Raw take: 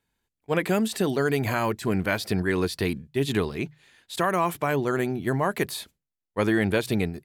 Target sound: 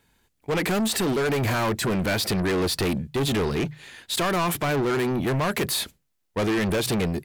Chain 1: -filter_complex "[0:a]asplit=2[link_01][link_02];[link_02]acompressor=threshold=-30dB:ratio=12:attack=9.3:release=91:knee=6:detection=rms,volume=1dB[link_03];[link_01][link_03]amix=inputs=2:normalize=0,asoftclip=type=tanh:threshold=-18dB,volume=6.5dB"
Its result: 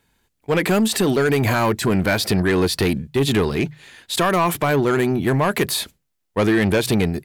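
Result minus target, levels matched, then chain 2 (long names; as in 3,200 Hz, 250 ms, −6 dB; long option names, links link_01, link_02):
soft clipping: distortion −7 dB
-filter_complex "[0:a]asplit=2[link_01][link_02];[link_02]acompressor=threshold=-30dB:ratio=12:attack=9.3:release=91:knee=6:detection=rms,volume=1dB[link_03];[link_01][link_03]amix=inputs=2:normalize=0,asoftclip=type=tanh:threshold=-27.5dB,volume=6.5dB"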